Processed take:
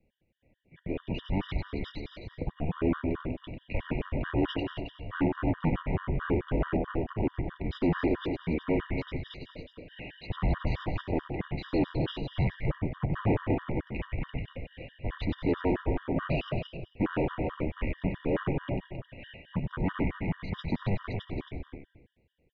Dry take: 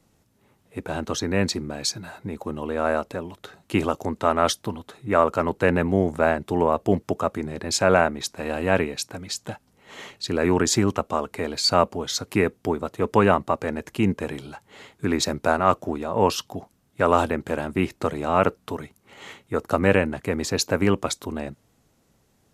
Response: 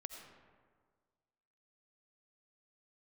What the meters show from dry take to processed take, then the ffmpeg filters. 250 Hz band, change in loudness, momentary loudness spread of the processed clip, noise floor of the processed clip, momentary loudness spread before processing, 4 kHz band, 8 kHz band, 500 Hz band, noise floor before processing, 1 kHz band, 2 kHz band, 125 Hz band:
−5.5 dB, −8.5 dB, 13 LU, −69 dBFS, 15 LU, −15.0 dB, below −40 dB, −11.0 dB, −65 dBFS, −14.5 dB, −11.0 dB, −2.0 dB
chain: -filter_complex "[0:a]asuperstop=centerf=1500:order=4:qfactor=0.99,bandreject=frequency=110.3:width_type=h:width=4,bandreject=frequency=220.6:width_type=h:width=4,bandreject=frequency=330.9:width_type=h:width=4,bandreject=frequency=441.2:width_type=h:width=4,bandreject=frequency=551.5:width_type=h:width=4,bandreject=frequency=661.8:width_type=h:width=4,bandreject=frequency=772.1:width_type=h:width=4,bandreject=frequency=882.4:width_type=h:width=4,bandreject=frequency=992.7:width_type=h:width=4,bandreject=frequency=1103:width_type=h:width=4,bandreject=frequency=1213.3:width_type=h:width=4,bandreject=frequency=1323.6:width_type=h:width=4,bandreject=frequency=1433.9:width_type=h:width=4,bandreject=frequency=1544.2:width_type=h:width=4,bandreject=frequency=1654.5:width_type=h:width=4,bandreject=frequency=1764.8:width_type=h:width=4,bandreject=frequency=1875.1:width_type=h:width=4,bandreject=frequency=1985.4:width_type=h:width=4,bandreject=frequency=2095.7:width_type=h:width=4,bandreject=frequency=2206:width_type=h:width=4,bandreject=frequency=2316.3:width_type=h:width=4,bandreject=frequency=2426.6:width_type=h:width=4,bandreject=frequency=2536.9:width_type=h:width=4,bandreject=frequency=2647.2:width_type=h:width=4,bandreject=frequency=2757.5:width_type=h:width=4,bandreject=frequency=2867.8:width_type=h:width=4,bandreject=frequency=2978.1:width_type=h:width=4,bandreject=frequency=3088.4:width_type=h:width=4,bandreject=frequency=3198.7:width_type=h:width=4,bandreject=frequency=3309:width_type=h:width=4,bandreject=frequency=3419.3:width_type=h:width=4,bandreject=frequency=3529.6:width_type=h:width=4,dynaudnorm=framelen=430:gausssize=5:maxgain=8dB,asplit=2[link_01][link_02];[link_02]equalizer=frequency=580:width_type=o:width=0.64:gain=-7[link_03];[1:a]atrim=start_sample=2205,afade=type=out:start_time=0.31:duration=0.01,atrim=end_sample=14112,adelay=96[link_04];[link_03][link_04]afir=irnorm=-1:irlink=0,volume=-1.5dB[link_05];[link_01][link_05]amix=inputs=2:normalize=0,asoftclip=type=tanh:threshold=-18.5dB,aecho=1:1:270:0.422,highpass=frequency=270:width_type=q:width=0.5412,highpass=frequency=270:width_type=q:width=1.307,lowpass=frequency=3100:width_type=q:width=0.5176,lowpass=frequency=3100:width_type=q:width=0.7071,lowpass=frequency=3100:width_type=q:width=1.932,afreqshift=-300,afftfilt=real='re*gt(sin(2*PI*4.6*pts/sr)*(1-2*mod(floor(b*sr/1024/960),2)),0)':imag='im*gt(sin(2*PI*4.6*pts/sr)*(1-2*mod(floor(b*sr/1024/960),2)),0)':win_size=1024:overlap=0.75,volume=-1.5dB"

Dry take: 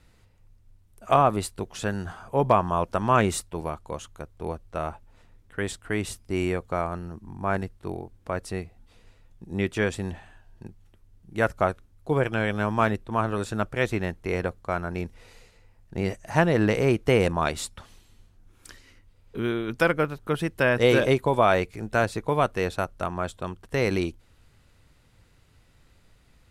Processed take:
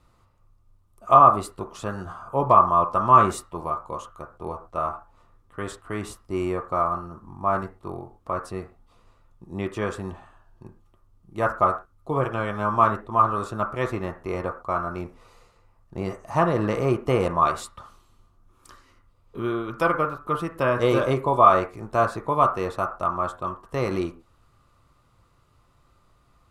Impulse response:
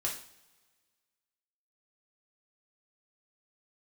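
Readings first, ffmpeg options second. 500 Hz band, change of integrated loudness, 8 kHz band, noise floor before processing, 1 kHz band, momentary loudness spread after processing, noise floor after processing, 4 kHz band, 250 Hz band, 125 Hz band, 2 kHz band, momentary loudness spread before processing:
0.0 dB, +3.0 dB, −5.0 dB, −59 dBFS, +7.0 dB, 19 LU, −62 dBFS, −5.5 dB, −1.5 dB, −2.0 dB, −4.5 dB, 15 LU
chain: -filter_complex "[0:a]asplit=2[link_01][link_02];[link_02]lowpass=frequency=1200:width_type=q:width=7.1[link_03];[1:a]atrim=start_sample=2205,atrim=end_sample=6174,lowshelf=frequency=210:gain=-8.5[link_04];[link_03][link_04]afir=irnorm=-1:irlink=0,volume=-4.5dB[link_05];[link_01][link_05]amix=inputs=2:normalize=0,volume=-5dB"

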